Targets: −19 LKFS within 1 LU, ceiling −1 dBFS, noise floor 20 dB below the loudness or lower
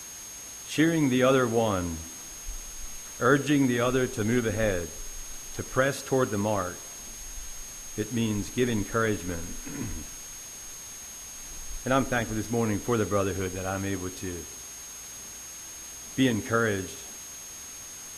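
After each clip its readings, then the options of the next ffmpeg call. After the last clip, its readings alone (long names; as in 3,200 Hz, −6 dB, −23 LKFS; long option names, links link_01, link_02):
interfering tone 6,500 Hz; level of the tone −41 dBFS; background noise floor −42 dBFS; target noise floor −50 dBFS; integrated loudness −29.5 LKFS; sample peak −8.0 dBFS; target loudness −19.0 LKFS
→ -af "bandreject=frequency=6500:width=30"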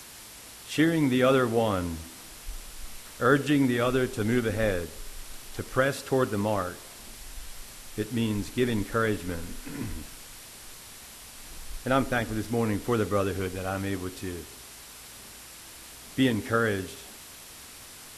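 interfering tone none found; background noise floor −46 dBFS; target noise floor −48 dBFS
→ -af "afftdn=noise_reduction=6:noise_floor=-46"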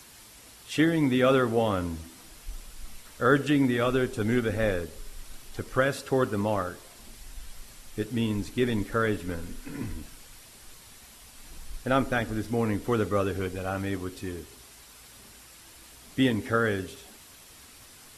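background noise floor −51 dBFS; integrated loudness −27.5 LKFS; sample peak −7.5 dBFS; target loudness −19.0 LKFS
→ -af "volume=8.5dB,alimiter=limit=-1dB:level=0:latency=1"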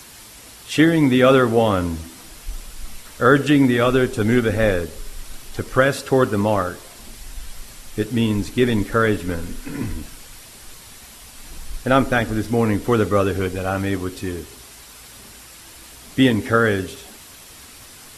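integrated loudness −19.0 LKFS; sample peak −1.0 dBFS; background noise floor −43 dBFS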